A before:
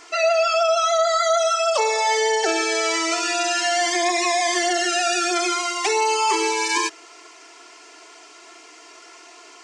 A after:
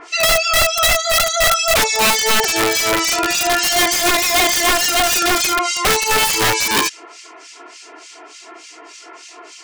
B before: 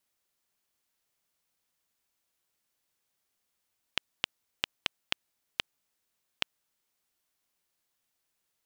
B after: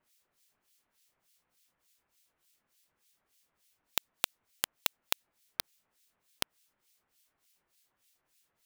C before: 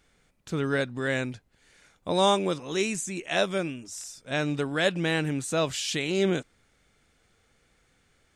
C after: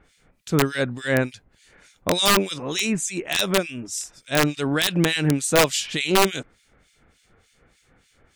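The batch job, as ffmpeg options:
-filter_complex "[0:a]acontrast=44,acrossover=split=2100[a][b];[a]aeval=exprs='val(0)*(1-1/2+1/2*cos(2*PI*3.4*n/s))':c=same[c];[b]aeval=exprs='val(0)*(1-1/2-1/2*cos(2*PI*3.4*n/s))':c=same[d];[c][d]amix=inputs=2:normalize=0,aeval=exprs='(mod(5.01*val(0)+1,2)-1)/5.01':c=same,volume=5dB"

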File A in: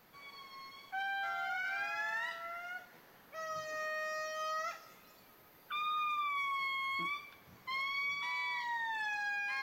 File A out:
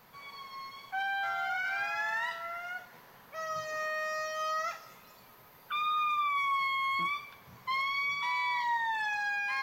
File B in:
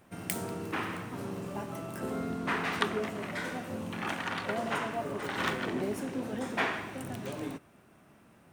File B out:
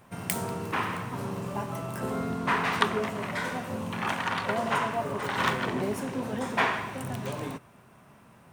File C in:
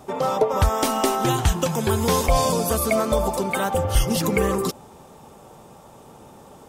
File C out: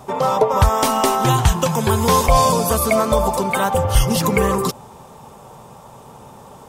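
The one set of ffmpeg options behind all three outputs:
-af "equalizer=f=125:t=o:w=0.33:g=5,equalizer=f=315:t=o:w=0.33:g=-7,equalizer=f=1k:t=o:w=0.33:g=6,volume=4dB"

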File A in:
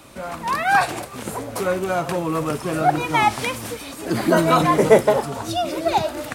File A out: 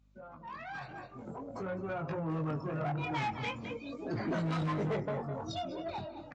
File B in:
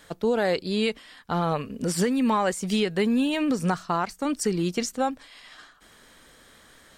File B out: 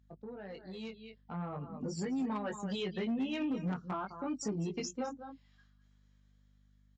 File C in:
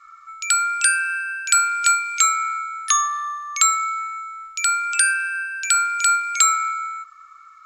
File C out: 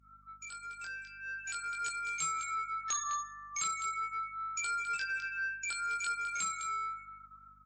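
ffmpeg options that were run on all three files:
-filter_complex "[0:a]afftdn=nr=29:nf=-30,highshelf=f=2.1k:g=5.5,asplit=2[a][b];[b]aecho=0:1:207:0.188[c];[a][c]amix=inputs=2:normalize=0,acrossover=split=180[d][e];[e]acompressor=threshold=-43dB:ratio=2[f];[d][f]amix=inputs=2:normalize=0,flanger=delay=19:depth=3.6:speed=0.44,aresample=16000,asoftclip=type=tanh:threshold=-30dB,aresample=44100,highpass=120,adynamicequalizer=threshold=0.002:dfrequency=200:dqfactor=4.6:tfrequency=200:tqfactor=4.6:attack=5:release=100:ratio=0.375:range=1.5:mode=cutabove:tftype=bell,dynaudnorm=f=620:g=5:m=10dB,volume=20dB,asoftclip=hard,volume=-20dB,aeval=exprs='val(0)+0.00141*(sin(2*PI*50*n/s)+sin(2*PI*2*50*n/s)/2+sin(2*PI*3*50*n/s)/3+sin(2*PI*4*50*n/s)/4+sin(2*PI*5*50*n/s)/5)':c=same,volume=-7dB" -ar 22050 -c:a libmp3lame -b:a 40k

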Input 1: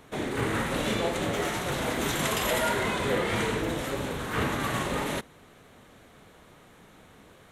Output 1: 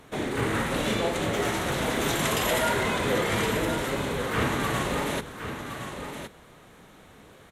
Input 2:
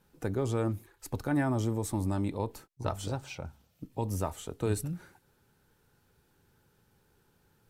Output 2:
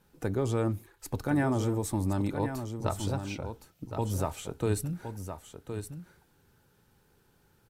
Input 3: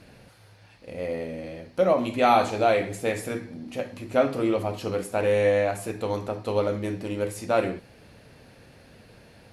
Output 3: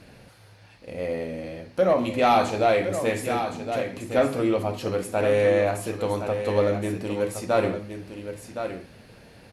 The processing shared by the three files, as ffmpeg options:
-af "aeval=exprs='0.447*sin(PI/2*1.41*val(0)/0.447)':c=same,aecho=1:1:1066:0.376,volume=-5dB" -ar 48000 -c:a libmp3lame -b:a 192k

